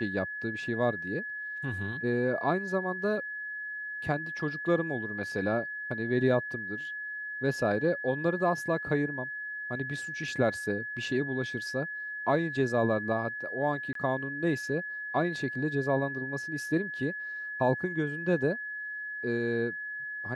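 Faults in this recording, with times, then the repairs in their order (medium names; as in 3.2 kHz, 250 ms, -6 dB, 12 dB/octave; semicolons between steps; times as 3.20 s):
whine 1.7 kHz -35 dBFS
13.93–13.95 s: dropout 23 ms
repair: band-stop 1.7 kHz, Q 30; interpolate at 13.93 s, 23 ms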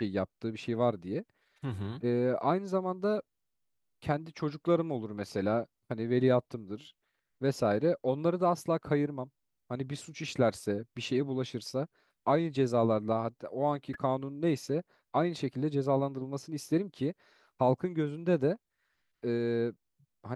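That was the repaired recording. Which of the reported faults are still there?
nothing left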